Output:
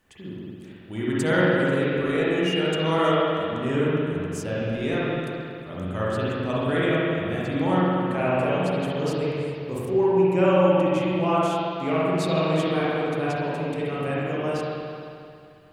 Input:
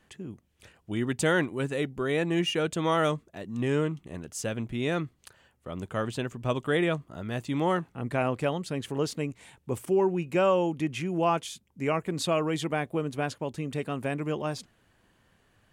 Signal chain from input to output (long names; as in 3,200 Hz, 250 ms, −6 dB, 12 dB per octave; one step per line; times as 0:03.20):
spring reverb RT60 2.5 s, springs 44/55 ms, chirp 25 ms, DRR −8 dB
bit-depth reduction 12 bits, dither none
level −3.5 dB